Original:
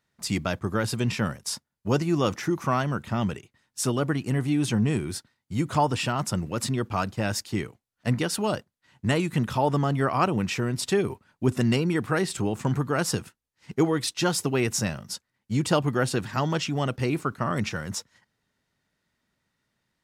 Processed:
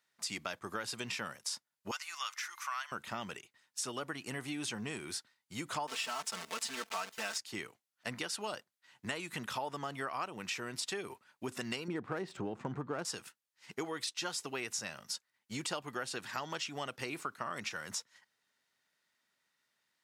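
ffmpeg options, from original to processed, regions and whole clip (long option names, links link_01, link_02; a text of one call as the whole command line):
ffmpeg -i in.wav -filter_complex "[0:a]asettb=1/sr,asplit=3[link_01][link_02][link_03];[link_01]atrim=end=1.914[link_04];[link_02]atrim=start=1.91:end=2.92,asetpts=PTS-STARTPTS,afade=type=in:duration=0.004:curve=qsin,afade=type=out:start_time=1.006:duration=0.004:curve=qsin,highpass=frequency=1100:width=0.5412,highpass=frequency=1100:width=1.3066,aeval=exprs='val(0)+0.001*sin(2*PI*2100*n/s)':channel_layout=same[link_05];[link_03]atrim=start=2.916[link_06];[link_04][link_05]acrossfade=duration=0.004:curve1=hsin:curve2=qsin[link_07];[link_07][link_06]acrossfade=duration=0.004:curve1=qsin:curve2=hsin,asettb=1/sr,asplit=3[link_08][link_09][link_10];[link_08]atrim=end=5.874[link_11];[link_09]atrim=start=5.87:end=7.38,asetpts=PTS-STARTPTS,afade=type=in:duration=0.004:curve=qsin,afade=type=out:start_time=1.506:duration=0.004:curve=qsin,acrusher=bits=6:dc=4:mix=0:aa=0.000001,lowshelf=frequency=260:gain=-11,aecho=1:1:4.5:0.93,atrim=end_sample=66591[link_12];[link_10]atrim=start=7.376[link_13];[link_11][link_12]acrossfade=duration=0.004:curve1=hsin:curve2=qsin[link_14];[link_14][link_13]acrossfade=duration=0.004:curve1=qsin:curve2=hsin,asettb=1/sr,asplit=3[link_15][link_16][link_17];[link_15]atrim=end=11.884[link_18];[link_16]atrim=start=11.88:end=13.05,asetpts=PTS-STARTPTS,afade=type=in:duration=0.004:curve=qsin,afade=type=out:start_time=1.166:duration=0.004:curve=qsin,tiltshelf=frequency=1100:gain=9,adynamicsmooth=sensitivity=7:basefreq=3900[link_19];[link_17]atrim=start=13.046[link_20];[link_18][link_19]acrossfade=duration=0.004:curve1=hsin:curve2=qsin[link_21];[link_21][link_20]acrossfade=duration=0.004:curve1=qsin:curve2=hsin,acrossover=split=9500[link_22][link_23];[link_23]acompressor=threshold=-51dB:ratio=4:attack=1:release=60[link_24];[link_22][link_24]amix=inputs=2:normalize=0,highpass=frequency=1200:poles=1,acompressor=threshold=-36dB:ratio=4" out.wav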